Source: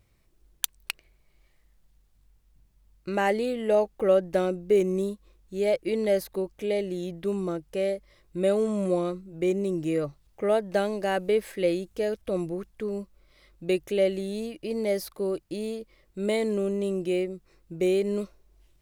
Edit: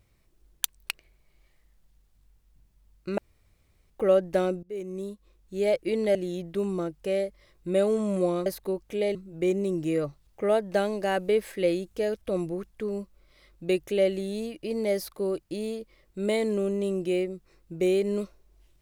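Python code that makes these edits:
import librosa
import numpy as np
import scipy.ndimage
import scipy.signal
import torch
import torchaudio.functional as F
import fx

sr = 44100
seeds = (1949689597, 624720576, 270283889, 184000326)

y = fx.edit(x, sr, fx.room_tone_fill(start_s=3.18, length_s=0.72),
    fx.fade_in_from(start_s=4.63, length_s=0.99, floor_db=-21.5),
    fx.move(start_s=6.15, length_s=0.69, to_s=9.15), tone=tone)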